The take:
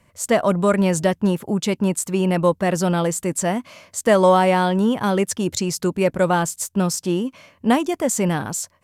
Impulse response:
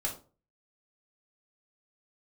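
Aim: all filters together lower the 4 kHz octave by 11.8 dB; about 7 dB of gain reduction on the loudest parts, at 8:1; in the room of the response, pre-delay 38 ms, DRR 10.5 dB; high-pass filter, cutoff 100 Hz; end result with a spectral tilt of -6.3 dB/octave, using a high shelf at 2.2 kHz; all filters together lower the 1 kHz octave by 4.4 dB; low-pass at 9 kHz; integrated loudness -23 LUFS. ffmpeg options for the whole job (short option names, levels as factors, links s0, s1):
-filter_complex "[0:a]highpass=100,lowpass=9000,equalizer=f=1000:t=o:g=-4,highshelf=f=2200:g=-8.5,equalizer=f=4000:t=o:g=-8,acompressor=threshold=0.1:ratio=8,asplit=2[s0][s1];[1:a]atrim=start_sample=2205,adelay=38[s2];[s1][s2]afir=irnorm=-1:irlink=0,volume=0.2[s3];[s0][s3]amix=inputs=2:normalize=0,volume=1.41"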